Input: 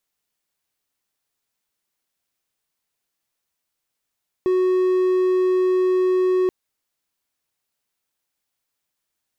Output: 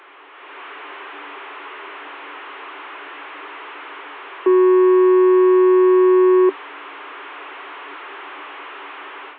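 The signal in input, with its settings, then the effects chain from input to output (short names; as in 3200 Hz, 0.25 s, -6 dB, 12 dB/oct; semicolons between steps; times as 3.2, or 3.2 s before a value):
tone triangle 369 Hz -13.5 dBFS 2.03 s
delta modulation 16 kbps, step -33.5 dBFS; AGC gain up to 10.5 dB; rippled Chebyshev high-pass 280 Hz, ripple 9 dB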